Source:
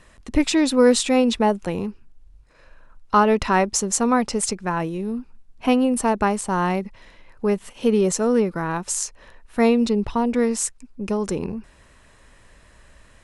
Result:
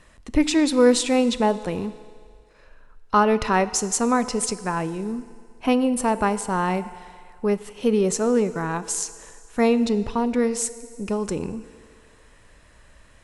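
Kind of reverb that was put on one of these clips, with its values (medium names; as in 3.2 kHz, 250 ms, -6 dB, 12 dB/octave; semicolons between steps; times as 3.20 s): FDN reverb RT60 2.1 s, low-frequency decay 0.7×, high-frequency decay 1×, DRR 13.5 dB; trim -1.5 dB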